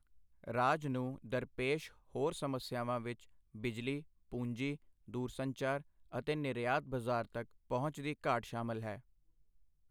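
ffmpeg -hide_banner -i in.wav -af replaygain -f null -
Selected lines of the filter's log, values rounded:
track_gain = +18.6 dB
track_peak = 0.065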